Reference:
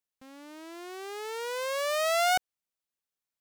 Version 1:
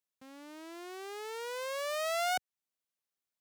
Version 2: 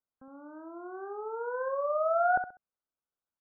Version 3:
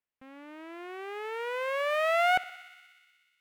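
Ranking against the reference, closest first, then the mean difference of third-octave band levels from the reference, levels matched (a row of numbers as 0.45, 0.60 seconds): 1, 3, 2; 1.5, 5.0, 13.0 decibels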